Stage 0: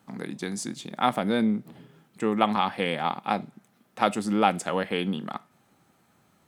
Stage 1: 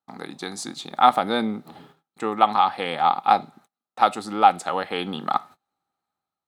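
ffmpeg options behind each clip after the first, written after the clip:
-af "agate=range=-30dB:threshold=-52dB:ratio=16:detection=peak,equalizer=f=125:t=o:w=0.33:g=-9,equalizer=f=200:t=o:w=0.33:g=-7,equalizer=f=800:t=o:w=0.33:g=11,equalizer=f=1.25k:t=o:w=0.33:g=9,equalizer=f=4k:t=o:w=0.33:g=10,dynaudnorm=f=160:g=7:m=9.5dB,volume=-1dB"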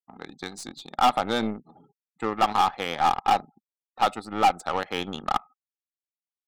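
-af "volume=14dB,asoftclip=hard,volume=-14dB,afftfilt=real='re*gte(hypot(re,im),0.00891)':imag='im*gte(hypot(re,im),0.00891)':win_size=1024:overlap=0.75,aeval=exprs='0.224*(cos(1*acos(clip(val(0)/0.224,-1,1)))-cos(1*PI/2))+0.02*(cos(3*acos(clip(val(0)/0.224,-1,1)))-cos(3*PI/2))+0.0126*(cos(4*acos(clip(val(0)/0.224,-1,1)))-cos(4*PI/2))+0.0112*(cos(7*acos(clip(val(0)/0.224,-1,1)))-cos(7*PI/2))':c=same"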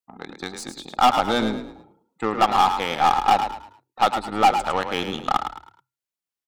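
-filter_complex "[0:a]asplit=5[a][b][c][d][e];[b]adelay=107,afreqshift=32,volume=-8dB[f];[c]adelay=214,afreqshift=64,volume=-17.9dB[g];[d]adelay=321,afreqshift=96,volume=-27.8dB[h];[e]adelay=428,afreqshift=128,volume=-37.7dB[i];[a][f][g][h][i]amix=inputs=5:normalize=0,volume=3.5dB"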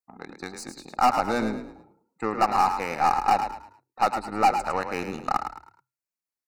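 -af "asuperstop=centerf=3300:order=4:qfactor=2.6,volume=-3.5dB"

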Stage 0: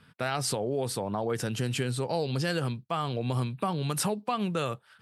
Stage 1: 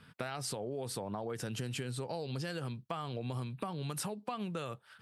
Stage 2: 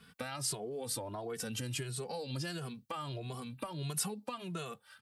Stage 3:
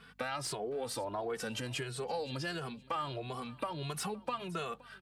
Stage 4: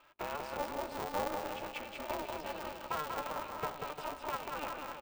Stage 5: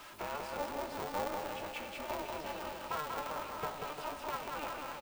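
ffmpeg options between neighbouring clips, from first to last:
-af "acompressor=threshold=-36dB:ratio=5"
-filter_complex "[0:a]highshelf=f=4.1k:g=9,asplit=2[a][b];[b]adelay=2.3,afreqshift=1.5[c];[a][c]amix=inputs=2:normalize=1,volume=1dB"
-filter_complex "[0:a]aeval=exprs='val(0)+0.000708*(sin(2*PI*50*n/s)+sin(2*PI*2*50*n/s)/2+sin(2*PI*3*50*n/s)/3+sin(2*PI*4*50*n/s)/4+sin(2*PI*5*50*n/s)/5)':c=same,aecho=1:1:519|1038:0.0794|0.0246,asplit=2[a][b];[b]highpass=f=720:p=1,volume=12dB,asoftclip=type=tanh:threshold=-19dB[c];[a][c]amix=inputs=2:normalize=0,lowpass=f=1.8k:p=1,volume=-6dB,volume=1dB"
-filter_complex "[0:a]asplit=3[a][b][c];[a]bandpass=f=730:t=q:w=8,volume=0dB[d];[b]bandpass=f=1.09k:t=q:w=8,volume=-6dB[e];[c]bandpass=f=2.44k:t=q:w=8,volume=-9dB[f];[d][e][f]amix=inputs=3:normalize=0,asplit=2[g][h];[h]aecho=0:1:190|351.5|488.8|605.5|704.6:0.631|0.398|0.251|0.158|0.1[i];[g][i]amix=inputs=2:normalize=0,aeval=exprs='val(0)*sgn(sin(2*PI*150*n/s))':c=same,volume=7.5dB"
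-filter_complex "[0:a]aeval=exprs='val(0)+0.5*0.00596*sgn(val(0))':c=same,asplit=2[a][b];[b]adelay=21,volume=-11.5dB[c];[a][c]amix=inputs=2:normalize=0,volume=-2.5dB"

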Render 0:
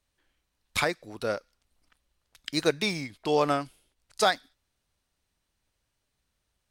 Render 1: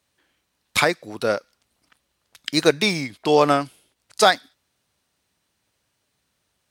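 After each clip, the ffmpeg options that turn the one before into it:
-af "highpass=110,volume=8dB"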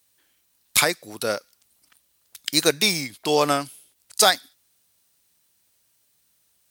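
-af "aemphasis=mode=production:type=75fm,volume=-3.5dB"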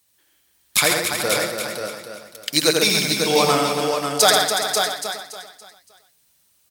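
-filter_complex "[0:a]asplit=2[a][b];[b]aecho=0:1:284|568|852|1136:0.447|0.17|0.0645|0.0245[c];[a][c]amix=inputs=2:normalize=0,flanger=delay=0.9:depth=5.8:regen=-45:speed=1.7:shape=sinusoidal,asplit=2[d][e];[e]aecho=0:1:84|136|199|539|638:0.631|0.501|0.188|0.531|0.2[f];[d][f]amix=inputs=2:normalize=0,volume=4.5dB"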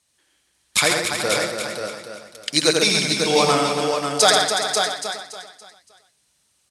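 -af "lowpass=f=10k:w=0.5412,lowpass=f=10k:w=1.3066"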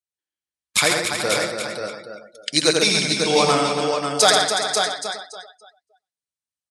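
-af "afftdn=nr=30:nf=-41"

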